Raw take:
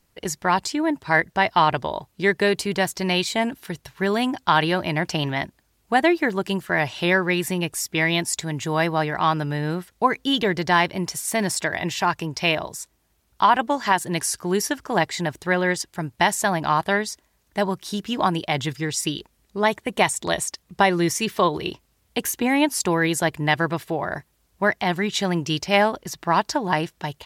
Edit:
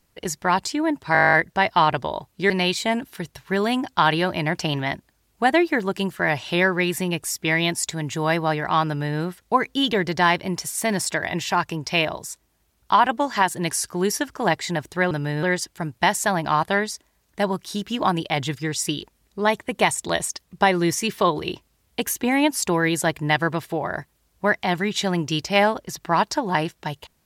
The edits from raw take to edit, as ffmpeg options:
-filter_complex "[0:a]asplit=14[s0][s1][s2][s3][s4][s5][s6][s7][s8][s9][s10][s11][s12][s13];[s0]atrim=end=1.152[s14];[s1]atrim=start=1.128:end=1.152[s15];[s2]atrim=start=1.128:end=1.152[s16];[s3]atrim=start=1.128:end=1.152[s17];[s4]atrim=start=1.128:end=1.152[s18];[s5]atrim=start=1.128:end=1.152[s19];[s6]atrim=start=1.128:end=1.152[s20];[s7]atrim=start=1.128:end=1.152[s21];[s8]atrim=start=1.128:end=1.152[s22];[s9]atrim=start=1.128:end=1.152[s23];[s10]atrim=start=1.128:end=2.302[s24];[s11]atrim=start=2.998:end=15.612[s25];[s12]atrim=start=9.368:end=9.692[s26];[s13]atrim=start=15.608[s27];[s14][s15]acrossfade=d=0.004:c1=hsin:c2=hsin[s28];[s28][s16]acrossfade=d=0.004:c1=hsin:c2=hsin[s29];[s29][s17]acrossfade=d=0.004:c1=hsin:c2=hsin[s30];[s30][s18]acrossfade=d=0.004:c1=hsin:c2=hsin[s31];[s31][s19]acrossfade=d=0.004:c1=hsin:c2=hsin[s32];[s32][s20]acrossfade=d=0.004:c1=hsin:c2=hsin[s33];[s33][s21]acrossfade=d=0.004:c1=hsin:c2=hsin[s34];[s34][s22]acrossfade=d=0.004:c1=hsin:c2=hsin[s35];[s35][s23]acrossfade=d=0.004:c1=hsin:c2=hsin[s36];[s36][s24]acrossfade=d=0.004:c1=hsin:c2=hsin[s37];[s37][s25]acrossfade=d=0.004:c1=hsin:c2=hsin[s38];[s38][s26]acrossfade=d=0.004:c1=hsin:c2=hsin[s39];[s39][s27]acrossfade=d=0.004:c1=hsin:c2=hsin"

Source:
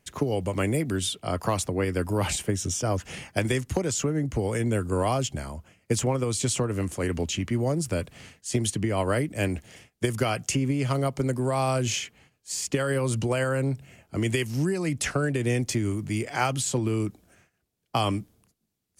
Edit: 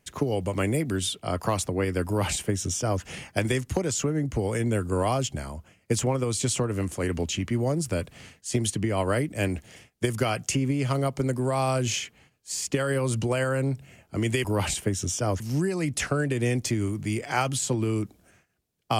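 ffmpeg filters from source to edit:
-filter_complex "[0:a]asplit=3[s0][s1][s2];[s0]atrim=end=14.442[s3];[s1]atrim=start=2.058:end=3.022[s4];[s2]atrim=start=14.438[s5];[s3][s4]acrossfade=d=0.004:c1=hsin:c2=hsin[s6];[s6][s5]acrossfade=d=0.004:c1=hsin:c2=hsin"

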